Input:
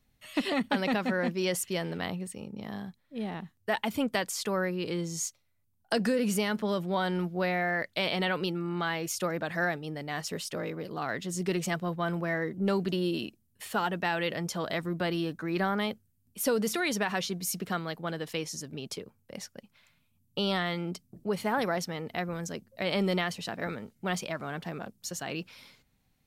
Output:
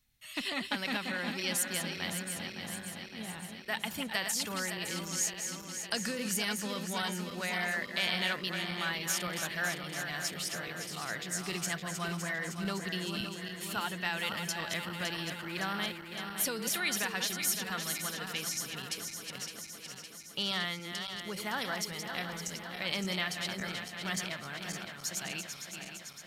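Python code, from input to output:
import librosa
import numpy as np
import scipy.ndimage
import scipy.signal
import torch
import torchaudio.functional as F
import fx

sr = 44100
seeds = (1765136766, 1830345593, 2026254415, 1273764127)

y = fx.reverse_delay_fb(x, sr, ms=281, feedback_pct=79, wet_db=-7)
y = fx.tone_stack(y, sr, knobs='5-5-5')
y = F.gain(torch.from_numpy(y), 8.0).numpy()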